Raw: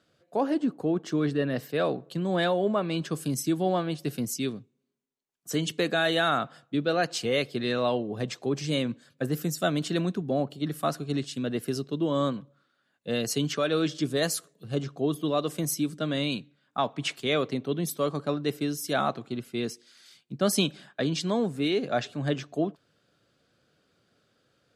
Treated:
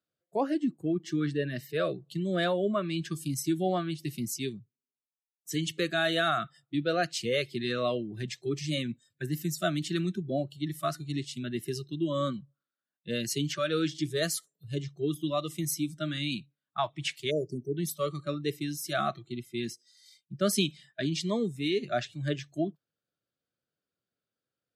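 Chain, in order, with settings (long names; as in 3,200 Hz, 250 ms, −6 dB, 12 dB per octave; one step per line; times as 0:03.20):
noise reduction from a noise print of the clip's start 21 dB
time-frequency box erased 0:17.31–0:17.77, 720–4,500 Hz
level −2 dB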